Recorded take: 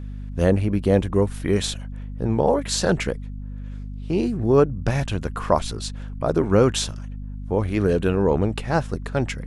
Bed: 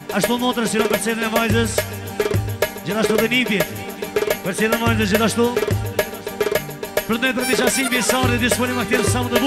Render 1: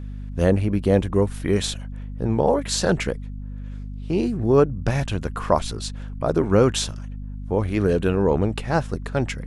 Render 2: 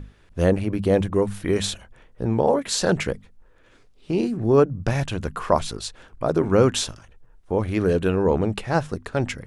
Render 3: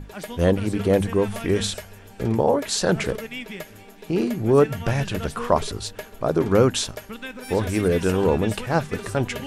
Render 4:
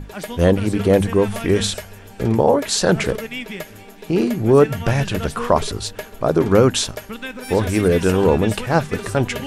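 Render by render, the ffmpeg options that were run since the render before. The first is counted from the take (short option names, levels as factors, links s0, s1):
-af anull
-af "bandreject=f=50:t=h:w=6,bandreject=f=100:t=h:w=6,bandreject=f=150:t=h:w=6,bandreject=f=200:t=h:w=6,bandreject=f=250:t=h:w=6"
-filter_complex "[1:a]volume=0.15[s0];[0:a][s0]amix=inputs=2:normalize=0"
-af "volume=1.68,alimiter=limit=0.794:level=0:latency=1"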